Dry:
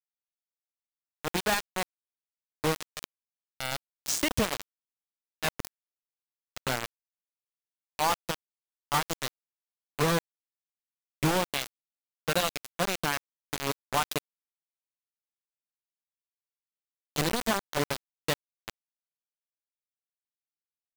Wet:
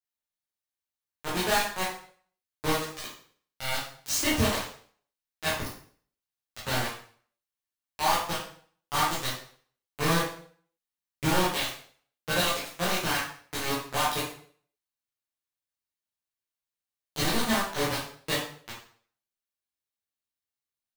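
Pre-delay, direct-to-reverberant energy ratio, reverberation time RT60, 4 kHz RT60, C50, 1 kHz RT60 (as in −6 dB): 6 ms, −8.5 dB, 0.50 s, 0.45 s, 2.5 dB, 0.50 s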